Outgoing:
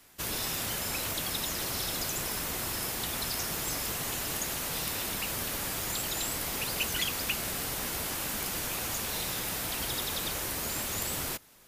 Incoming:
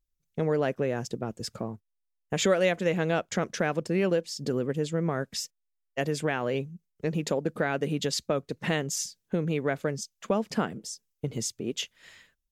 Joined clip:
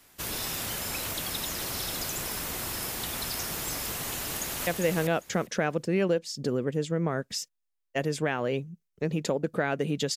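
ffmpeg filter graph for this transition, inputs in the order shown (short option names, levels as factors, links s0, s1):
-filter_complex "[0:a]apad=whole_dur=10.16,atrim=end=10.16,atrim=end=4.672[s0];[1:a]atrim=start=2.688:end=8.18[s1];[s0][s1]acrossfade=d=0.004:c1=hsin:c2=hsin,asplit=2[s2][s3];[s3]afade=t=in:st=4.19:d=0.01,afade=t=out:st=4.67:d=0.01,aecho=0:1:400|800|1200:0.595662|0.0893493|0.0134024[s4];[s2][s4]amix=inputs=2:normalize=0"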